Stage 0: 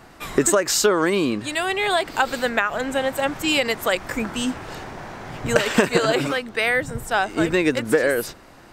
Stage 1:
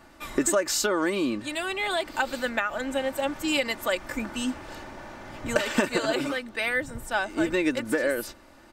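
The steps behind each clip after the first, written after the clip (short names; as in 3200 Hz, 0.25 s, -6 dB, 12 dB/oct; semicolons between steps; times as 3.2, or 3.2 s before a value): comb 3.4 ms, depth 52%; gain -7 dB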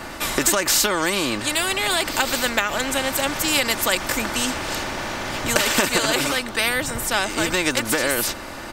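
spectral compressor 2:1; gain +7 dB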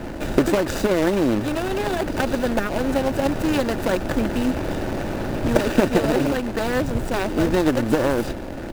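median filter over 41 samples; gain +7.5 dB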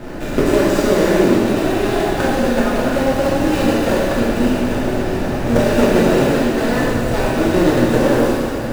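plate-style reverb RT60 2.7 s, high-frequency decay 0.95×, DRR -7.5 dB; gain -2.5 dB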